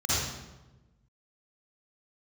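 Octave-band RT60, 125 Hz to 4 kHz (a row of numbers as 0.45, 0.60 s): 1.6, 1.4, 1.2, 1.0, 0.85, 0.75 s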